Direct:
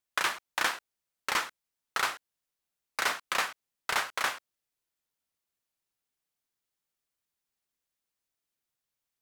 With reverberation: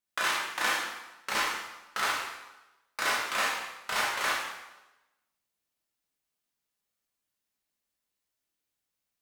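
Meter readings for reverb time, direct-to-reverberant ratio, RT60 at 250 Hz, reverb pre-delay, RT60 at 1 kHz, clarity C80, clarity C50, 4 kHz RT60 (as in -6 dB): 1.0 s, -5.5 dB, 1.0 s, 7 ms, 1.0 s, 3.5 dB, 0.5 dB, 0.95 s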